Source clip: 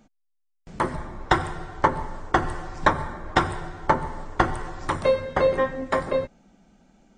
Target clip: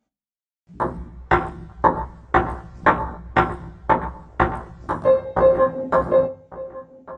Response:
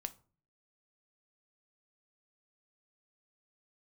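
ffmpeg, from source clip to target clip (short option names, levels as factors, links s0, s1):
-filter_complex "[0:a]highpass=47,afwtdn=0.0447,dynaudnorm=f=470:g=5:m=2.51,asplit=2[s0][s1];[s1]adelay=1152,lowpass=f=1800:p=1,volume=0.126,asplit=2[s2][s3];[s3]adelay=1152,lowpass=f=1800:p=1,volume=0.22[s4];[s0][s2][s4]amix=inputs=3:normalize=0,asplit=2[s5][s6];[1:a]atrim=start_sample=2205,adelay=17[s7];[s6][s7]afir=irnorm=-1:irlink=0,volume=1.33[s8];[s5][s8]amix=inputs=2:normalize=0,volume=0.794"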